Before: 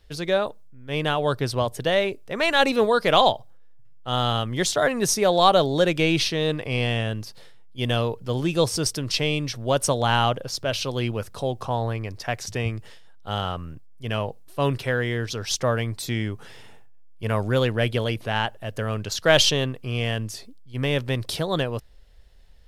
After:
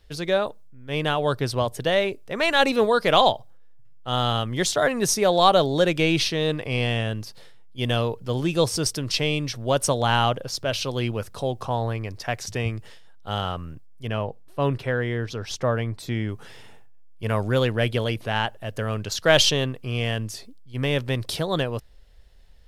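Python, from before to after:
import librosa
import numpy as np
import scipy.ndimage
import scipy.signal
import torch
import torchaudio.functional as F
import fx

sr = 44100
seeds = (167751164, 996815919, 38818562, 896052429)

y = fx.high_shelf(x, sr, hz=3200.0, db=-10.5, at=(14.07, 16.29))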